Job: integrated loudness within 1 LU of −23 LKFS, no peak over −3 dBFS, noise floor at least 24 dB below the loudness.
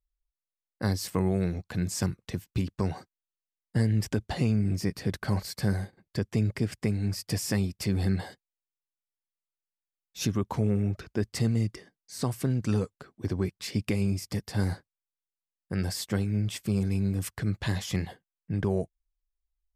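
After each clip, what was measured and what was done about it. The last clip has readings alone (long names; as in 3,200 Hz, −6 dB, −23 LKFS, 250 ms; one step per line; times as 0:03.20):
integrated loudness −30.0 LKFS; sample peak −16.0 dBFS; target loudness −23.0 LKFS
→ level +7 dB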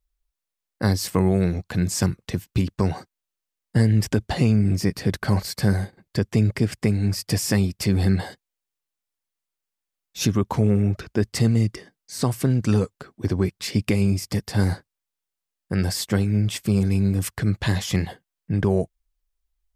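integrated loudness −23.0 LKFS; sample peak −9.0 dBFS; background noise floor −85 dBFS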